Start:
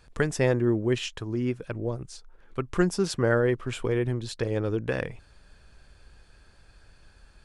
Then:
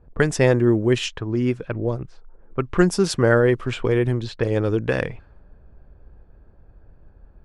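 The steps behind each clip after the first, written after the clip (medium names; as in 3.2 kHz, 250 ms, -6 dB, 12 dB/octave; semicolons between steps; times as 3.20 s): level-controlled noise filter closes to 560 Hz, open at -23 dBFS; trim +6.5 dB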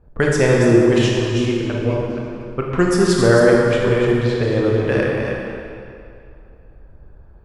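chunks repeated in reverse 243 ms, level -6.5 dB; reverberation RT60 2.5 s, pre-delay 22 ms, DRR -2 dB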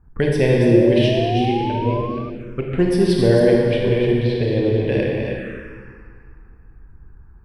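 painted sound rise, 0.70–2.30 s, 510–1200 Hz -20 dBFS; touch-sensitive phaser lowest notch 540 Hz, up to 1.3 kHz, full sweep at -17.5 dBFS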